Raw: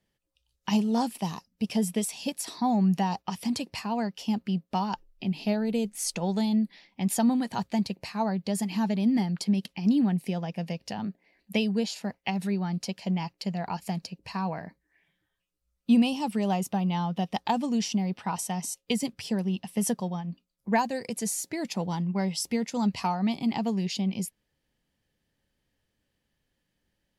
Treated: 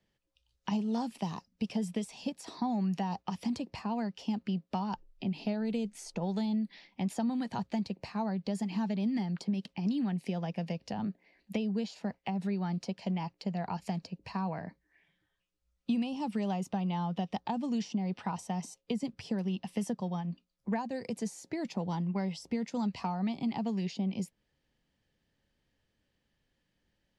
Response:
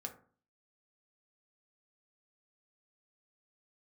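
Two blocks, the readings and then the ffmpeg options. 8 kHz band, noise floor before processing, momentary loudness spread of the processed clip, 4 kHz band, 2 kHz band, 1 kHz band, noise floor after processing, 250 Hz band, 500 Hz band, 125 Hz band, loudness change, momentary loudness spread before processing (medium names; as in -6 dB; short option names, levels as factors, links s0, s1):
-15.0 dB, -80 dBFS, 6 LU, -9.5 dB, -8.0 dB, -6.5 dB, -80 dBFS, -5.5 dB, -6.0 dB, -4.5 dB, -6.0 dB, 9 LU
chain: -filter_complex "[0:a]lowpass=6600,acrossover=split=220|1200[s0][s1][s2];[s0]acompressor=threshold=0.0158:ratio=4[s3];[s1]acompressor=threshold=0.0178:ratio=4[s4];[s2]acompressor=threshold=0.00398:ratio=4[s5];[s3][s4][s5]amix=inputs=3:normalize=0"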